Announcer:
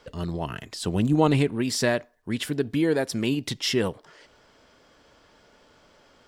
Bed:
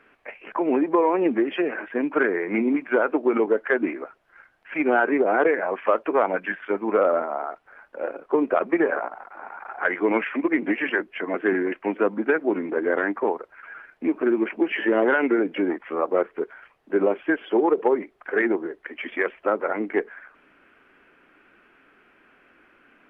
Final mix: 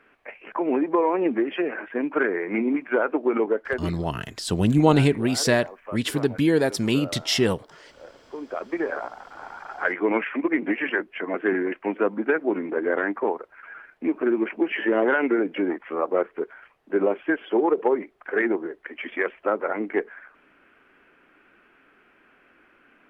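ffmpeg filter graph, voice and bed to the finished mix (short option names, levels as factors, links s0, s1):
-filter_complex "[0:a]adelay=3650,volume=1.41[s0];[1:a]volume=5.01,afade=t=out:st=3.46:d=0.6:silence=0.177828,afade=t=in:st=8.33:d=1:silence=0.16788[s1];[s0][s1]amix=inputs=2:normalize=0"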